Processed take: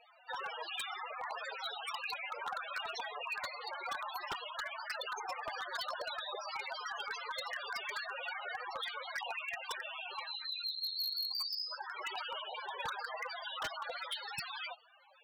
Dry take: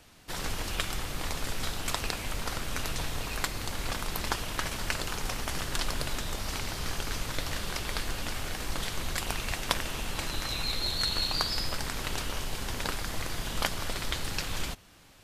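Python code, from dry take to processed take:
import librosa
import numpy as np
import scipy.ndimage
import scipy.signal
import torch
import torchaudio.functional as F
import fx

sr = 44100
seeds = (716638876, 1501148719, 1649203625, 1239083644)

y = scipy.signal.sosfilt(scipy.signal.butter(2, 500.0, 'highpass', fs=sr, output='sos'), x)
y = fx.spec_topn(y, sr, count=8)
y = fx.rider(y, sr, range_db=5, speed_s=0.5)
y = 10.0 ** (-34.0 / 20.0) * (np.abs((y / 10.0 ** (-34.0 / 20.0) + 3.0) % 4.0 - 2.0) - 1.0)
y = y * librosa.db_to_amplitude(2.5)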